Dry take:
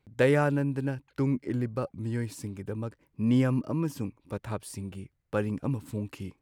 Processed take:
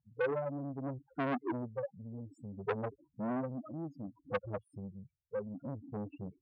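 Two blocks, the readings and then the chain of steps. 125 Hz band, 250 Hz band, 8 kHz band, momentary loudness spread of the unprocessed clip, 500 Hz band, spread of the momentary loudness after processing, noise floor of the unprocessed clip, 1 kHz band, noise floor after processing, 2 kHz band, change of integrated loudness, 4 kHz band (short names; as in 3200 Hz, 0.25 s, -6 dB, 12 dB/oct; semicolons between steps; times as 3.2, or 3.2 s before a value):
-14.0 dB, -10.5 dB, under -30 dB, 15 LU, -7.0 dB, 12 LU, -74 dBFS, -4.0 dB, -82 dBFS, -8.5 dB, -9.5 dB, -12.5 dB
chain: loudest bins only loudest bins 4; in parallel at +1.5 dB: compressor, threshold -36 dBFS, peak gain reduction 14.5 dB; on the sum: low shelf 270 Hz +6.5 dB; wah 0.61 Hz 490–1400 Hz, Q 3.3; core saturation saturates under 1200 Hz; gain +9 dB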